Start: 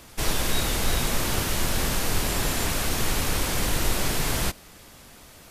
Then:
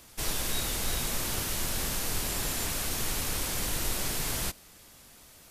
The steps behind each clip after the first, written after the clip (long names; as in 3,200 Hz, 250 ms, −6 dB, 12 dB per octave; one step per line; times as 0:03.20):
high-shelf EQ 4,000 Hz +7 dB
level −8.5 dB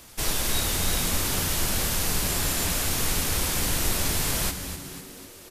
echo with shifted repeats 249 ms, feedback 54%, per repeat −97 Hz, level −9.5 dB
level +5 dB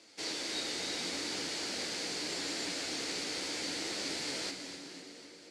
flanger 0.77 Hz, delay 8.7 ms, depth 8.9 ms, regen −39%
loudspeaker in its box 280–7,600 Hz, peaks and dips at 300 Hz +10 dB, 480 Hz +5 dB, 1,100 Hz −6 dB, 2,100 Hz +5 dB, 4,500 Hz +9 dB
convolution reverb RT60 4.6 s, pre-delay 92 ms, DRR 10.5 dB
level −7 dB